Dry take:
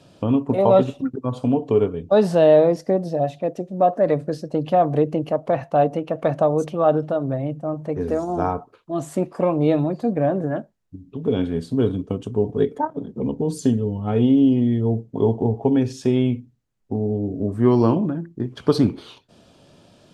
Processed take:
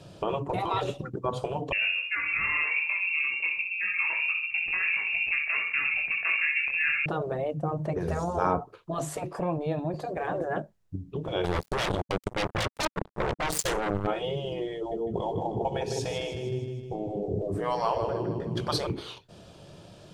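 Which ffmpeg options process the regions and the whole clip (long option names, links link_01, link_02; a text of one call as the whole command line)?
ffmpeg -i in.wav -filter_complex "[0:a]asettb=1/sr,asplit=3[link_01][link_02][link_03];[link_01]atrim=end=1.724[link_04];[link_02]atrim=start=1.72:end=7.06,asetpts=PTS-STARTPTS,afade=type=in:duration=0.004:curve=qsin,afade=type=out:start_time=5.336:duration=0.004:curve=qsin,aecho=1:1:64|128|192|256|320|384:0.422|0.207|0.101|0.0496|0.0243|0.0119,atrim=end_sample=235494,flanger=delay=20:depth=2.6:speed=2.1,lowpass=frequency=2500:width_type=q:width=0.5098,lowpass=frequency=2500:width_type=q:width=0.6013,lowpass=frequency=2500:width_type=q:width=0.9,lowpass=frequency=2500:width_type=q:width=2.563,afreqshift=-2900[link_05];[link_03]atrim=start=7.056[link_06];[link_04][link_05]acrossfade=duration=0.004:curve1=hsin:curve2=qsin[link_07];[link_07][link_06]acrossfade=duration=0.004:curve1=qsin:curve2=hsin,asettb=1/sr,asplit=3[link_08][link_09][link_10];[link_08]atrim=end=9.364[link_11];[link_09]atrim=start=9.36:end=9.94,asetpts=PTS-STARTPTS,afade=type=in:duration=0.004:curve=qsin,afade=type=out:start_time=0.576:duration=0.004:curve=qsin,aecho=1:1:1.2:0.33,atrim=end_sample=25578,acompressor=threshold=-34dB:ratio=2:attack=3.2:release=140:knee=1:detection=peak[link_12];[link_10]atrim=start=9.936[link_13];[link_11][link_12]acrossfade=duration=0.004:curve1=hsin:curve2=qsin[link_14];[link_14][link_13]acrossfade=duration=0.004:curve1=qsin:curve2=hsin,asettb=1/sr,asplit=3[link_15][link_16][link_17];[link_15]atrim=end=11.444[link_18];[link_16]atrim=start=11.44:end=14.07,asetpts=PTS-STARTPTS,afade=type=in:duration=0.004:curve=qsin,afade=type=out:start_time=2.626:duration=0.004:curve=qsin,bass=frequency=250:gain=-3,treble=frequency=4000:gain=8,acompressor=mode=upward:threshold=-28dB:ratio=2.5:attack=3.2:release=140:knee=2.83:detection=peak,acrusher=bits=3:mix=0:aa=0.5[link_19];[link_17]atrim=start=14.066[link_20];[link_18][link_19]acrossfade=duration=0.004:curve1=hsin:curve2=qsin[link_21];[link_21][link_20]acrossfade=duration=0.004:curve1=qsin:curve2=hsin,asettb=1/sr,asplit=3[link_22][link_23][link_24];[link_22]atrim=end=14.764[link_25];[link_23]atrim=start=14.76:end=18.87,asetpts=PTS-STARTPTS,afade=type=in:duration=0.004:curve=qsin,afade=type=out:start_time=4.106:duration=0.004:curve=qsin,equalizer=frequency=1300:width=1:gain=-4,aecho=1:1:155|310|465|620|775|930:0.376|0.203|0.11|0.0592|0.032|0.0173,atrim=end_sample=181251[link_26];[link_24]atrim=start=18.866[link_27];[link_25][link_26]acrossfade=duration=0.004:curve1=hsin:curve2=qsin[link_28];[link_28][link_27]acrossfade=duration=0.004:curve1=qsin:curve2=hsin,lowshelf=frequency=360:gain=4.5,afftfilt=real='re*lt(hypot(re,im),0.398)':imag='im*lt(hypot(re,im),0.398)':win_size=1024:overlap=0.75,equalizer=frequency=250:width_type=o:width=0.25:gain=-15,volume=1.5dB" out.wav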